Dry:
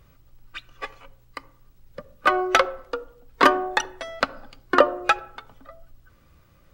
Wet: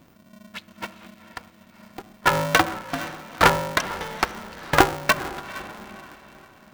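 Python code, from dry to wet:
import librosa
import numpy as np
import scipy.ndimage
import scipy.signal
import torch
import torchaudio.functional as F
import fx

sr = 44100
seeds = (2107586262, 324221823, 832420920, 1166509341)

y = fx.echo_diffused(x, sr, ms=460, feedback_pct=41, wet_db=-14)
y = y * np.sign(np.sin(2.0 * np.pi * 210.0 * np.arange(len(y)) / sr))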